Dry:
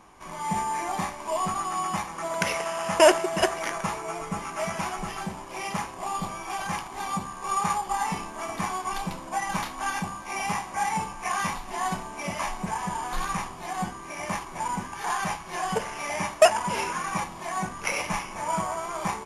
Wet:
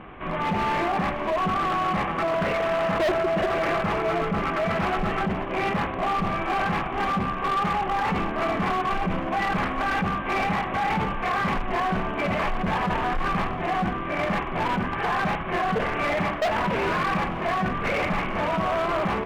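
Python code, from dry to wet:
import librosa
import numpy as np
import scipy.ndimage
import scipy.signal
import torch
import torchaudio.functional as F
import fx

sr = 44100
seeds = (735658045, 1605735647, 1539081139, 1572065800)

p1 = fx.cvsd(x, sr, bps=16000)
p2 = fx.lowpass(p1, sr, hz=1500.0, slope=6)
p3 = fx.peak_eq(p2, sr, hz=920.0, db=-10.5, octaves=0.29)
p4 = fx.over_compress(p3, sr, threshold_db=-36.0, ratio=-0.5)
p5 = p3 + (p4 * librosa.db_to_amplitude(0.0))
p6 = np.clip(10.0 ** (26.5 / 20.0) * p5, -1.0, 1.0) / 10.0 ** (26.5 / 20.0)
p7 = p6 + fx.echo_single(p6, sr, ms=480, db=-16.5, dry=0)
y = p7 * librosa.db_to_amplitude(6.0)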